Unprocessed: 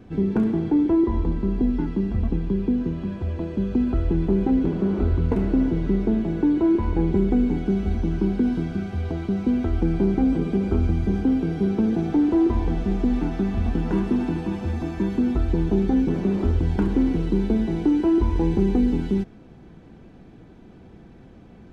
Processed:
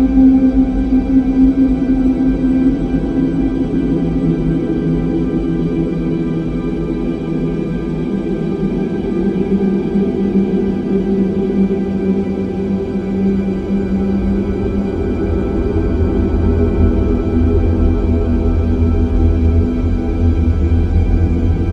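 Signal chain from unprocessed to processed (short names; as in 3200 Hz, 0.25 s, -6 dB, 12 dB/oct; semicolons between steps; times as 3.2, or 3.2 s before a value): frequency-shifting echo 0.303 s, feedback 58%, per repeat +82 Hz, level -18 dB; Paulstretch 35×, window 0.25 s, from 10.26; gain +6.5 dB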